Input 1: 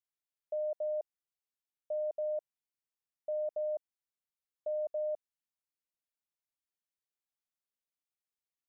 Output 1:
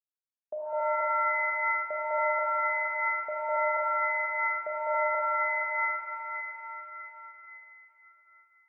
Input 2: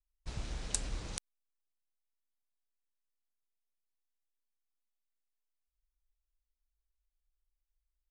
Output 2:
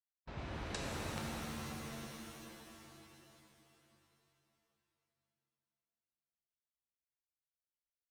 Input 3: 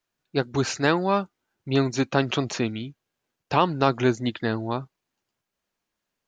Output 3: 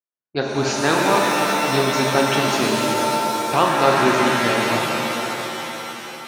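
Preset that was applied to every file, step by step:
HPF 65 Hz 12 dB/oct; gate with hold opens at -38 dBFS; low-pass opened by the level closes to 1600 Hz, open at -22.5 dBFS; low shelf 200 Hz -7.5 dB; shimmer reverb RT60 3.4 s, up +7 st, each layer -2 dB, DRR -1.5 dB; gain +2 dB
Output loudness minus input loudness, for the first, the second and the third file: +8.5, -4.0, +6.0 LU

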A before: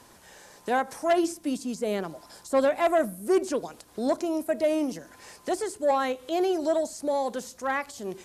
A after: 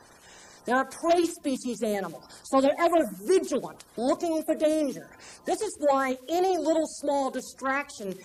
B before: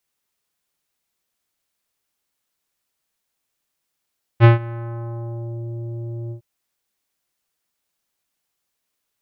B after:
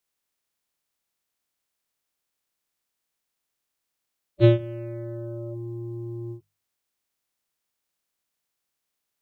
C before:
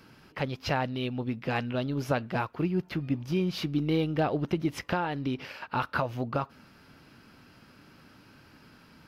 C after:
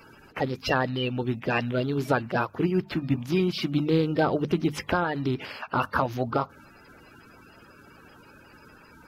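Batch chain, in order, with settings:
bin magnitudes rounded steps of 30 dB; notches 50/100/150/200 Hz; match loudness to -27 LUFS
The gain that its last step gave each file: +1.0, -4.0, +4.5 dB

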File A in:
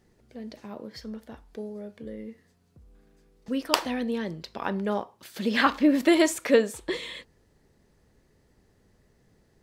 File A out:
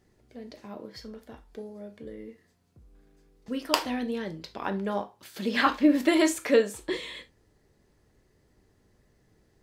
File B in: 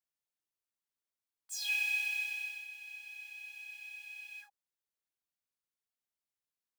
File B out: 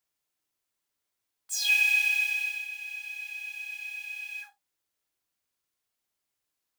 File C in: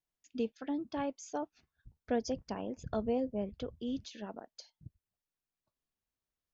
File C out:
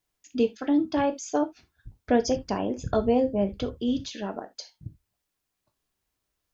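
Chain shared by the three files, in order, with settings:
non-linear reverb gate 0.1 s falling, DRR 7 dB; match loudness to -27 LUFS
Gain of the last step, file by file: -2.0, +8.5, +10.5 dB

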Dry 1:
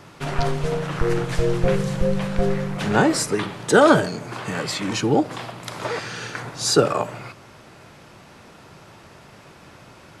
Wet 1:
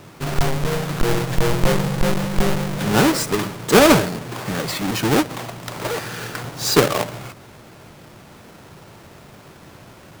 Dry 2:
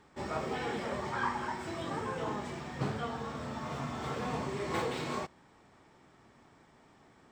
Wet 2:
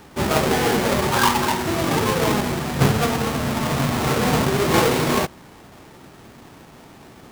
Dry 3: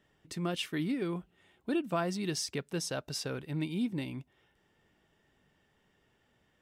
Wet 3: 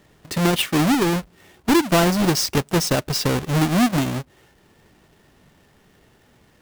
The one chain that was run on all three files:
half-waves squared off; match loudness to -20 LUFS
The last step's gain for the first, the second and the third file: -2.5, +12.0, +10.5 dB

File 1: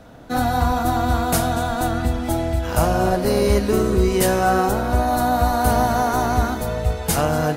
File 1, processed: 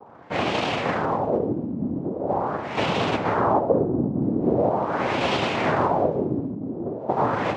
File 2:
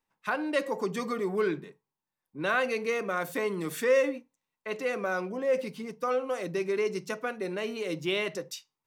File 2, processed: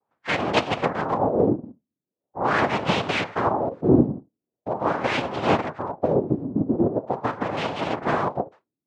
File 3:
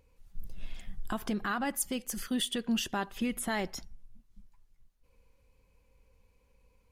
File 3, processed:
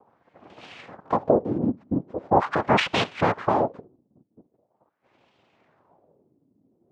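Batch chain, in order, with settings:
noise vocoder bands 2; LFO low-pass sine 0.42 Hz 250–2900 Hz; match loudness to -24 LUFS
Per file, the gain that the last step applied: -4.5, +6.0, +9.0 dB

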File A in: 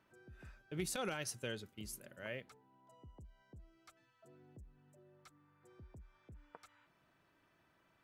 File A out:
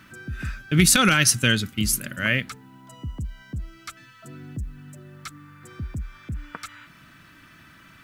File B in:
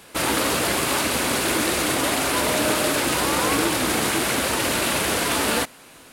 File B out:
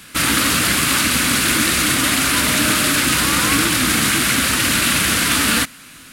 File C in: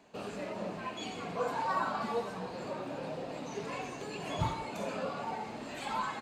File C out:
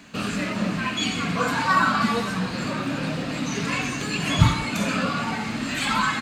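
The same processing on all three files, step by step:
band shelf 590 Hz -12.5 dB; normalise peaks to -3 dBFS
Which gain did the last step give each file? +25.5, +7.5, +17.5 dB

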